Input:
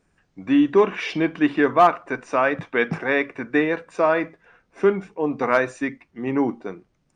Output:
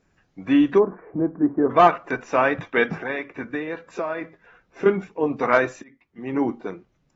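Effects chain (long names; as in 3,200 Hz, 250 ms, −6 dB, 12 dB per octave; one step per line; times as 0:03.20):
0:00.78–0:01.71: Gaussian smoothing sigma 8.9 samples
0:02.89–0:04.86: downward compressor 4 to 1, threshold −27 dBFS, peak gain reduction 11 dB
0:05.82–0:06.62: fade in
AAC 24 kbit/s 44,100 Hz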